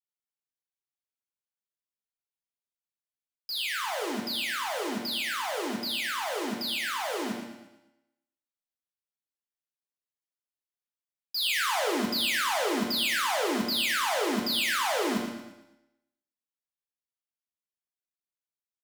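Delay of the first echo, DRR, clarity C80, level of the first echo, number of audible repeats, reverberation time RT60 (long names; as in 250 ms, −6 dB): 115 ms, −1.0 dB, 5.0 dB, −11.0 dB, 1, 1.0 s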